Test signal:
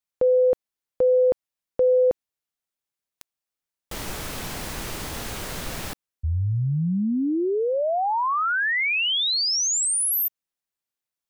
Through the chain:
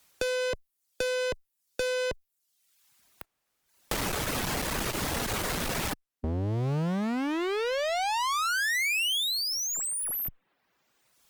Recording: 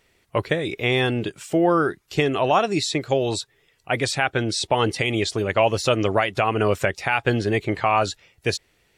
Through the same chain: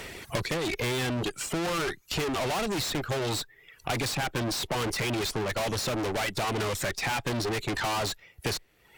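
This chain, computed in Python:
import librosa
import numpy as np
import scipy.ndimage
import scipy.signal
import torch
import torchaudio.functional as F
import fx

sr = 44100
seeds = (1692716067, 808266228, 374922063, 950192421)

y = fx.dereverb_blind(x, sr, rt60_s=0.72)
y = fx.tube_stage(y, sr, drive_db=33.0, bias=0.6)
y = fx.clip_asym(y, sr, top_db=-39.5, bottom_db=-34.0)
y = fx.band_squash(y, sr, depth_pct=70)
y = F.gain(torch.from_numpy(y), 8.0).numpy()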